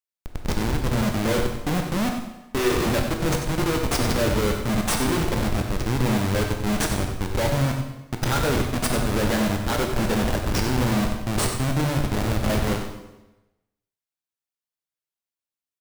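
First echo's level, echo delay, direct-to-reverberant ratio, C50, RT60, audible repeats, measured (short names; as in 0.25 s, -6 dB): -9.5 dB, 93 ms, 2.0 dB, 4.5 dB, 1.0 s, 1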